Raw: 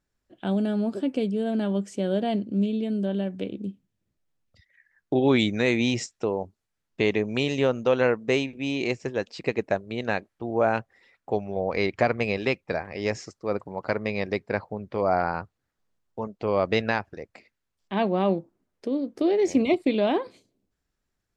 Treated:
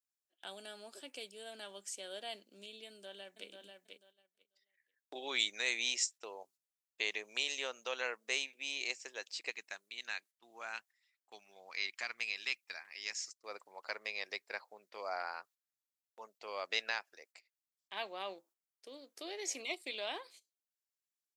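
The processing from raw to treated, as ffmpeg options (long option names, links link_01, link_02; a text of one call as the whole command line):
ffmpeg -i in.wav -filter_complex "[0:a]asplit=2[link_01][link_02];[link_02]afade=type=in:start_time=2.87:duration=0.01,afade=type=out:start_time=3.48:duration=0.01,aecho=0:1:490|980|1470:0.530884|0.132721|0.0331803[link_03];[link_01][link_03]amix=inputs=2:normalize=0,asettb=1/sr,asplit=3[link_04][link_05][link_06];[link_04]atrim=end=9.514[link_07];[link_05]atrim=start=9.51:end=13.39,asetpts=PTS-STARTPTS,afade=type=in:duration=0.004:curve=qsin,afade=type=out:start_time=3.876:duration=0.004:curve=qsin,equalizer=frequency=540:width=0.98:gain=-13.5[link_08];[link_06]atrim=start=13.386[link_09];[link_07][link_08]acrossfade=duration=0.004:curve1=hsin:curve2=qsin[link_10];[link_10][link_09]acrossfade=duration=0.004:curve1=qsin:curve2=hsin,highpass=380,agate=range=-11dB:threshold=-48dB:ratio=16:detection=peak,aderivative,volume=3dB" out.wav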